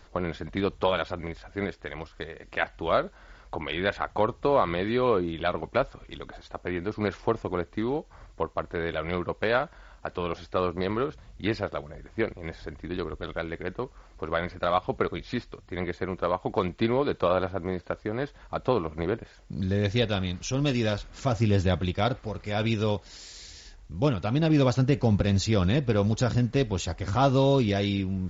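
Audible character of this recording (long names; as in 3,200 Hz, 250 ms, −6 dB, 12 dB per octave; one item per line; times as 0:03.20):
background noise floor −53 dBFS
spectral slope −5.5 dB per octave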